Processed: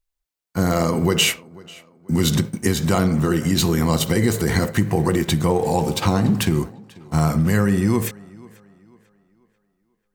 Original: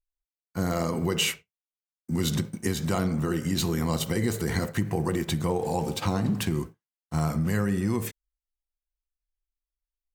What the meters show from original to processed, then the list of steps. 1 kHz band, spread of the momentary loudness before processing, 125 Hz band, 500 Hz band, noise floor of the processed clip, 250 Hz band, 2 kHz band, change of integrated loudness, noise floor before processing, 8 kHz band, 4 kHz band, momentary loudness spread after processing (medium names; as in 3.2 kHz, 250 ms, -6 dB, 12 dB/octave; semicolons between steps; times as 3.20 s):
+8.0 dB, 5 LU, +8.0 dB, +8.0 dB, -76 dBFS, +8.0 dB, +8.0 dB, +8.0 dB, under -85 dBFS, +8.0 dB, +8.0 dB, 6 LU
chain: tape echo 491 ms, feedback 40%, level -22 dB, low-pass 5.6 kHz; trim +8 dB